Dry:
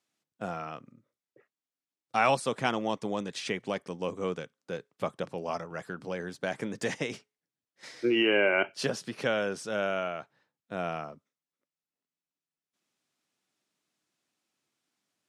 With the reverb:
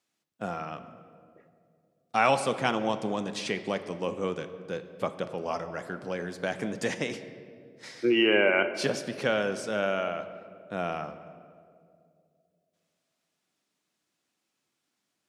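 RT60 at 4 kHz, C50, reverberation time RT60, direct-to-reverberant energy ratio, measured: 1.3 s, 11.5 dB, 2.4 s, 10.0 dB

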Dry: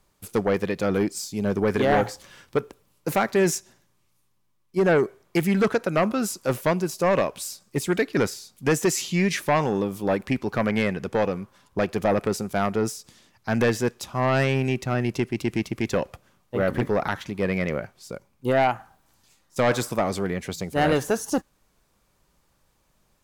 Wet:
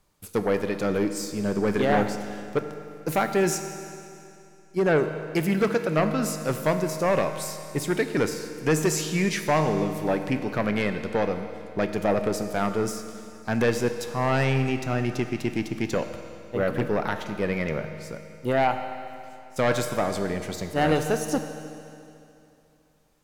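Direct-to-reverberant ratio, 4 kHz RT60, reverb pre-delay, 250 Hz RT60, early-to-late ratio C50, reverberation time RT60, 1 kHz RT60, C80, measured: 7.0 dB, 2.6 s, 7 ms, 2.7 s, 8.5 dB, 2.7 s, 2.7 s, 9.0 dB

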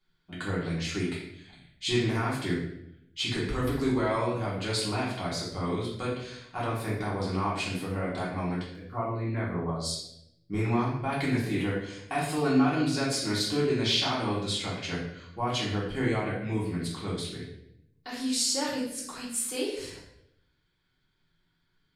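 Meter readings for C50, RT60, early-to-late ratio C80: 2.5 dB, 0.75 s, 6.5 dB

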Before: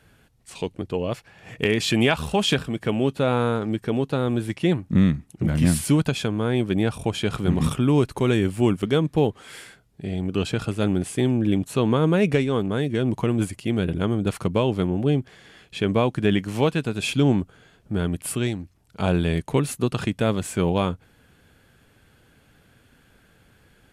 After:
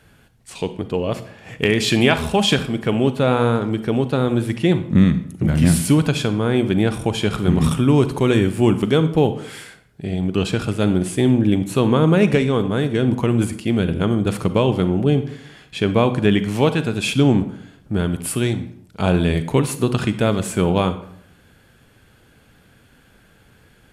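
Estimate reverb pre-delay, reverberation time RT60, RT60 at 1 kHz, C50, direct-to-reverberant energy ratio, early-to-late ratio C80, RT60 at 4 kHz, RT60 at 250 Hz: 36 ms, 0.65 s, 0.65 s, 12.5 dB, 11.0 dB, 15.5 dB, 0.45 s, 0.70 s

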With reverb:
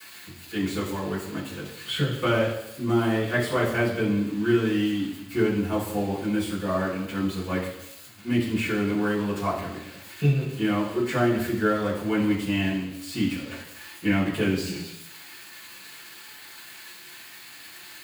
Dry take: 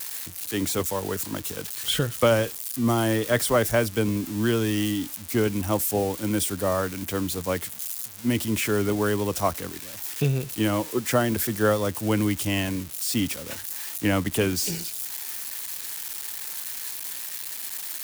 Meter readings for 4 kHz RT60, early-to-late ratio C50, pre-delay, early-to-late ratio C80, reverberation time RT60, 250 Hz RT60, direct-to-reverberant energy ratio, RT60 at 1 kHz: 0.90 s, 5.0 dB, 3 ms, 8.0 dB, 0.85 s, 0.80 s, −11.5 dB, 0.85 s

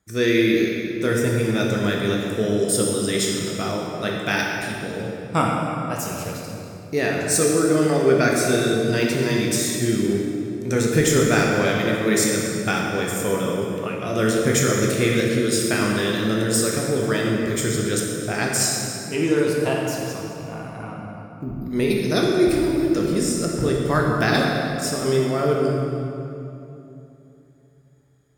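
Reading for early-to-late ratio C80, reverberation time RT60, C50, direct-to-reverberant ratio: 1.5 dB, 3.0 s, 0.0 dB, −2.0 dB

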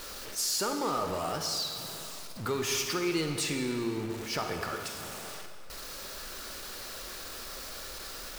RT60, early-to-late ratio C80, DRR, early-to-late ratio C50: 2.4 s, 6.5 dB, 5.0 dB, 5.5 dB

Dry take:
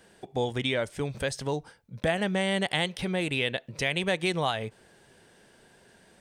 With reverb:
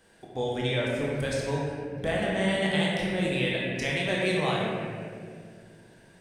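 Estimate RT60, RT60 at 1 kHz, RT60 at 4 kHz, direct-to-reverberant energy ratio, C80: 2.1 s, 1.7 s, 1.3 s, −4.5 dB, 0.0 dB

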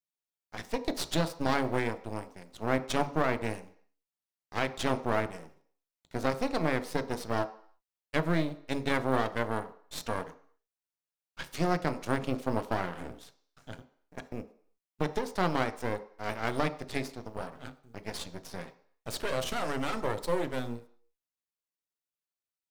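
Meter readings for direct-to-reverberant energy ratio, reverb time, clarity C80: 9.0 dB, 0.55 s, 18.0 dB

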